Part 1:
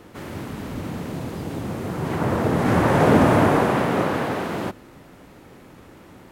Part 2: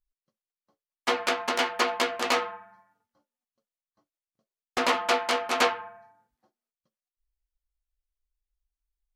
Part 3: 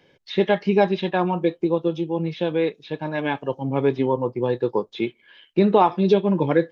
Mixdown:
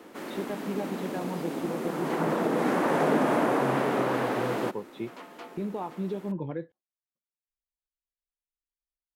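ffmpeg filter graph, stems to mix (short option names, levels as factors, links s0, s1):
-filter_complex "[0:a]highpass=f=220:w=0.5412,highpass=f=220:w=1.3066,highshelf=f=4600:g=8.5,acompressor=threshold=0.0708:ratio=2,volume=0.841[s0];[1:a]adelay=300,volume=0.106[s1];[2:a]lowshelf=f=180:g=9.5,volume=0.282,asplit=2[s2][s3];[s3]apad=whole_len=416907[s4];[s1][s4]sidechaincompress=threshold=0.0282:ratio=8:attack=16:release=258[s5];[s5][s2]amix=inputs=2:normalize=0,alimiter=limit=0.0668:level=0:latency=1:release=429,volume=1[s6];[s0][s6]amix=inputs=2:normalize=0,highshelf=f=3200:g=-8.5"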